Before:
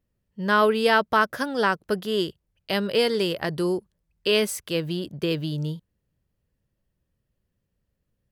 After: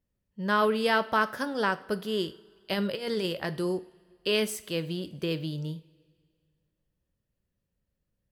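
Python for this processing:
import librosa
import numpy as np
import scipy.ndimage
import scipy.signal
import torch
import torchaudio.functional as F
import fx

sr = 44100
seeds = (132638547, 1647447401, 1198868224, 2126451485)

y = fx.over_compress(x, sr, threshold_db=-24.0, ratio=-0.5, at=(2.71, 3.26))
y = fx.rev_double_slope(y, sr, seeds[0], early_s=0.4, late_s=2.1, knee_db=-18, drr_db=11.0)
y = y * librosa.db_to_amplitude(-5.0)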